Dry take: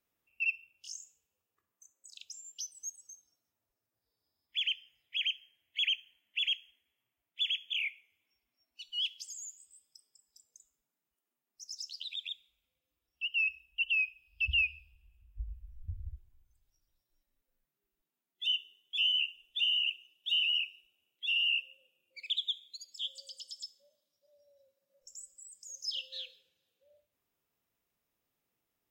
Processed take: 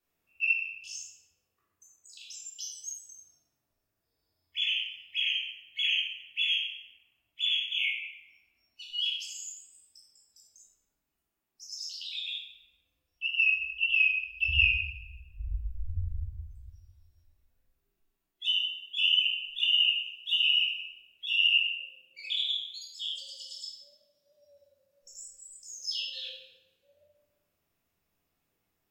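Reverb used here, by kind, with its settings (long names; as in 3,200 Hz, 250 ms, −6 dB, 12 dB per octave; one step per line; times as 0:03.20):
rectangular room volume 470 cubic metres, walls mixed, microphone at 3.4 metres
level −3.5 dB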